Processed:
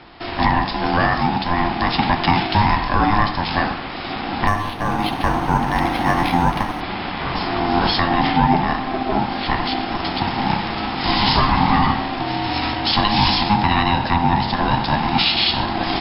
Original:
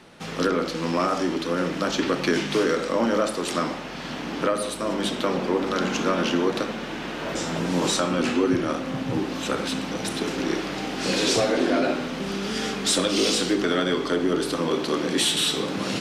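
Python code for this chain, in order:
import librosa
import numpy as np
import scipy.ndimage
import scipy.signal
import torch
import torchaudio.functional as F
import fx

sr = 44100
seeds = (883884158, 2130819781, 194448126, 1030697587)

y = x * np.sin(2.0 * np.pi * 520.0 * np.arange(len(x)) / sr)
y = fx.brickwall_lowpass(y, sr, high_hz=5400.0)
y = fx.resample_linear(y, sr, factor=6, at=(4.47, 6.81))
y = F.gain(torch.from_numpy(y), 9.0).numpy()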